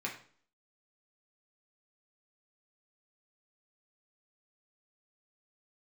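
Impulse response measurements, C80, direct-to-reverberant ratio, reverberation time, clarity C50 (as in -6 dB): 12.5 dB, -2.5 dB, 0.50 s, 8.0 dB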